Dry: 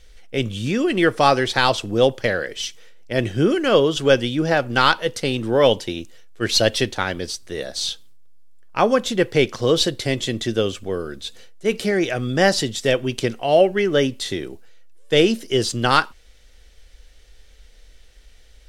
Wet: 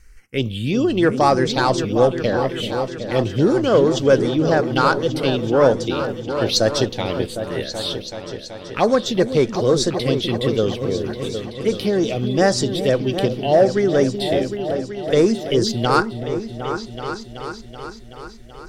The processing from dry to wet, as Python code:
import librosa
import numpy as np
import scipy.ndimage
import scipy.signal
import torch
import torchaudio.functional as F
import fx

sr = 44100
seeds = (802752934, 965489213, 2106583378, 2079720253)

y = fx.env_phaser(x, sr, low_hz=580.0, high_hz=3000.0, full_db=-14.0)
y = fx.cheby_harmonics(y, sr, harmonics=(5,), levels_db=(-25,), full_scale_db=-2.0)
y = fx.echo_opening(y, sr, ms=379, hz=400, octaves=2, feedback_pct=70, wet_db=-6)